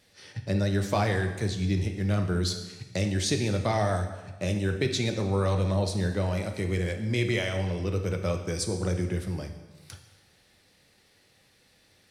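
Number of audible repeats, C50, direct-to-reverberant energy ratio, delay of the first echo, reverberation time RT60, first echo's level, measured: no echo, 8.0 dB, 5.0 dB, no echo, 1.2 s, no echo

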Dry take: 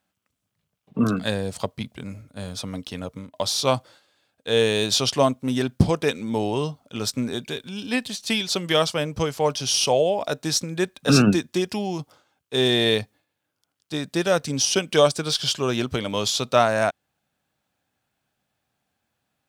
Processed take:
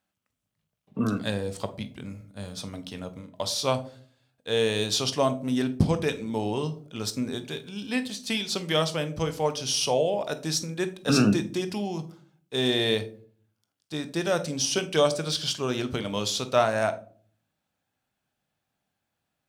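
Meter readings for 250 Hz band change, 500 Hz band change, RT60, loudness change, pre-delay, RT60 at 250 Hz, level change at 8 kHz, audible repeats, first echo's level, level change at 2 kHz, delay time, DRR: -3.5 dB, -4.0 dB, 0.50 s, -4.0 dB, 18 ms, 0.70 s, -5.0 dB, no echo, no echo, -4.5 dB, no echo, 10.0 dB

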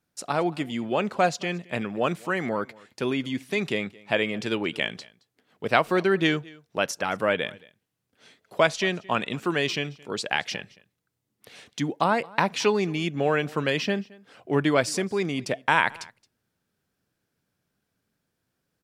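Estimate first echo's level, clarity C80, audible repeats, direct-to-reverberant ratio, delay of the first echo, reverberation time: -23.5 dB, no reverb, 1, no reverb, 221 ms, no reverb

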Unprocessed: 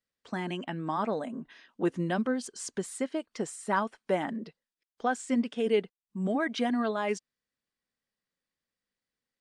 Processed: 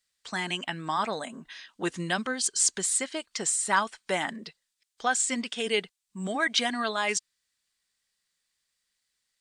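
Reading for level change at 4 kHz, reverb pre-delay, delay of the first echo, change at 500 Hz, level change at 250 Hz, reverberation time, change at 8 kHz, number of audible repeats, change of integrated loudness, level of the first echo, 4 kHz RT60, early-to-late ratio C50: +12.0 dB, no reverb, no echo, -2.5 dB, -4.5 dB, no reverb, +16.0 dB, no echo, +3.5 dB, no echo, no reverb, no reverb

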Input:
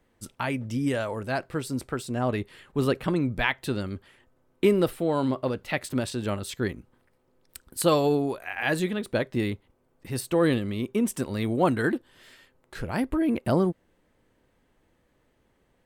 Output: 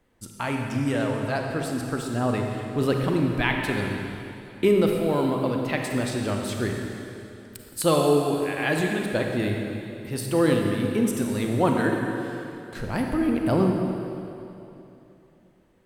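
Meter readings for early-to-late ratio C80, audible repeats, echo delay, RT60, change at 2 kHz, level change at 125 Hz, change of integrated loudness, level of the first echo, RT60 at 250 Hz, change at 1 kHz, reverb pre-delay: 3.0 dB, no echo, no echo, 2.9 s, +2.5 dB, +3.5 dB, +2.0 dB, no echo, 3.1 s, +2.5 dB, 32 ms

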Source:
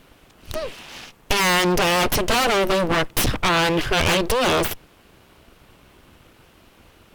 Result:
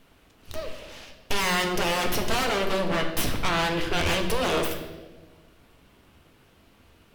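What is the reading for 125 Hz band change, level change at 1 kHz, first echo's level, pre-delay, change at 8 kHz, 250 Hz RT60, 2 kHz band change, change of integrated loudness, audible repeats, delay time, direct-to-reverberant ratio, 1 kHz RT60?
-5.5 dB, -6.5 dB, no echo, 4 ms, -7.0 dB, 1.8 s, -6.0 dB, -6.0 dB, no echo, no echo, 3.0 dB, 1.0 s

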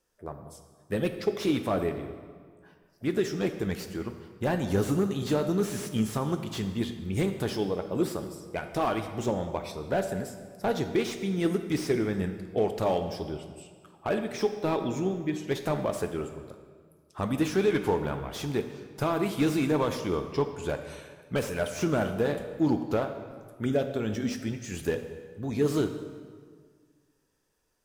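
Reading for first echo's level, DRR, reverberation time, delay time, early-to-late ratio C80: no echo, 7.0 dB, 1.8 s, no echo, 10.0 dB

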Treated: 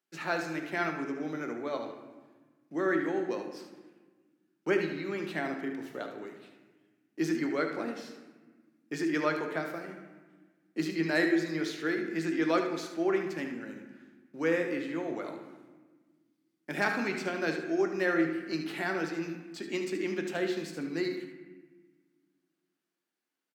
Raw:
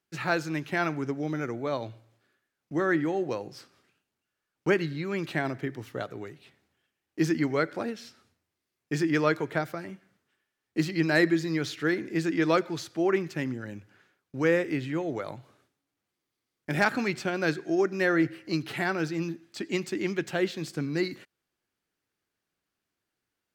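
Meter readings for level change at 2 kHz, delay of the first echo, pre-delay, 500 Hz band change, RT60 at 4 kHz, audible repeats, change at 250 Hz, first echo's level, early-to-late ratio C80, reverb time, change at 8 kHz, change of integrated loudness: -3.0 dB, 74 ms, 3 ms, -3.0 dB, 0.90 s, 1, -3.5 dB, -9.0 dB, 9.0 dB, 1.3 s, -4.0 dB, -3.5 dB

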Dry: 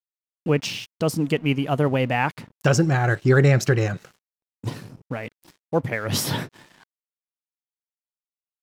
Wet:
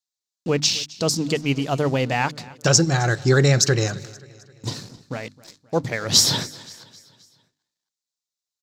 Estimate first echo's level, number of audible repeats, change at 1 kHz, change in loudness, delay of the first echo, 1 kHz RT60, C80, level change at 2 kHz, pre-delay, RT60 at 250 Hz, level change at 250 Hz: -21.5 dB, 3, 0.0 dB, +2.0 dB, 263 ms, no reverb, no reverb, 0.0 dB, no reverb, no reverb, -0.5 dB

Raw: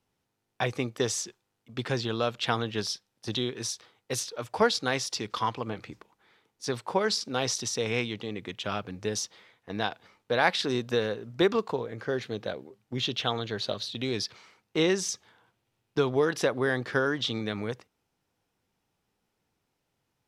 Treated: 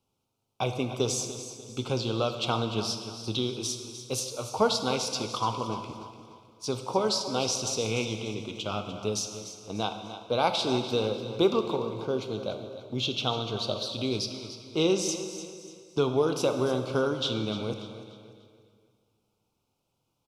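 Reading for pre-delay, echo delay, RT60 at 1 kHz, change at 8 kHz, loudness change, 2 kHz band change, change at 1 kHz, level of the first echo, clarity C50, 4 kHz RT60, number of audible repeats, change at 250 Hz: 3 ms, 295 ms, 2.1 s, +1.0 dB, +0.5 dB, -7.5 dB, +0.5 dB, -12.5 dB, 6.5 dB, 2.1 s, 3, +1.5 dB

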